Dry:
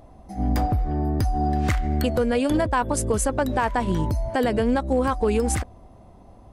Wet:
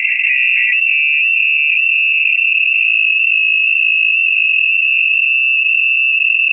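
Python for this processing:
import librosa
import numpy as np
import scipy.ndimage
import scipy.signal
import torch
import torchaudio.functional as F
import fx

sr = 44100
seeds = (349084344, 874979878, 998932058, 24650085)

p1 = fx.tilt_eq(x, sr, slope=-3.5, at=(0.81, 1.57))
p2 = fx.highpass(p1, sr, hz=73.0, slope=24, at=(4.35, 5.12))
p3 = fx.rider(p2, sr, range_db=4, speed_s=2.0)
p4 = p2 + (p3 * 10.0 ** (-1.5 / 20.0))
p5 = fx.filter_sweep_lowpass(p4, sr, from_hz=850.0, to_hz=150.0, start_s=1.64, end_s=3.3, q=0.74)
p6 = fx.rotary(p5, sr, hz=6.3)
p7 = fx.filter_sweep_lowpass(p6, sr, from_hz=580.0, to_hz=110.0, start_s=0.75, end_s=1.87, q=2.5)
p8 = p7 + fx.echo_feedback(p7, sr, ms=555, feedback_pct=28, wet_db=-6.5, dry=0)
p9 = fx.freq_invert(p8, sr, carrier_hz=2700)
p10 = fx.env_flatten(p9, sr, amount_pct=100)
y = p10 * 10.0 ** (-14.0 / 20.0)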